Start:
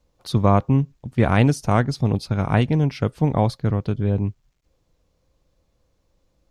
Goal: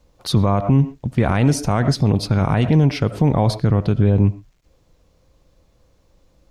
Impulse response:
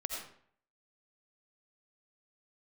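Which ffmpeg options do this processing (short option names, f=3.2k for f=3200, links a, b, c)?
-filter_complex "[0:a]asplit=2[a][b];[b]lowpass=f=2.9k:p=1[c];[1:a]atrim=start_sample=2205,atrim=end_sample=6174[d];[c][d]afir=irnorm=-1:irlink=0,volume=-13.5dB[e];[a][e]amix=inputs=2:normalize=0,alimiter=level_in=12dB:limit=-1dB:release=50:level=0:latency=1,volume=-4.5dB"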